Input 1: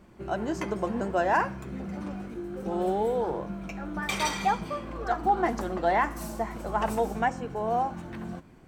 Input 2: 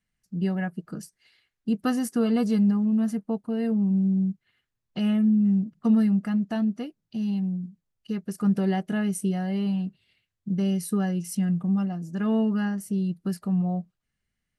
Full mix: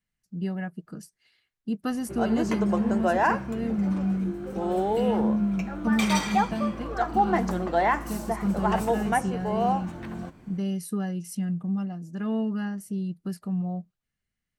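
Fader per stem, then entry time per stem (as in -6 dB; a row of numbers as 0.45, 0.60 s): +1.5, -4.0 dB; 1.90, 0.00 s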